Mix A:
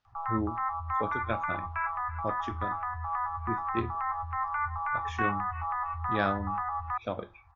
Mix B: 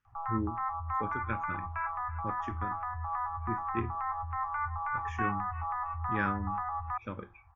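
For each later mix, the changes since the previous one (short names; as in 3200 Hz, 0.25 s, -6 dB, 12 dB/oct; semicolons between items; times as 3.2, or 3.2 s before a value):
speech: add fixed phaser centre 1700 Hz, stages 4; background: add high shelf 2100 Hz -11 dB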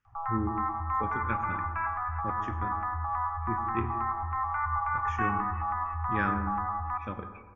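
reverb: on, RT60 1.3 s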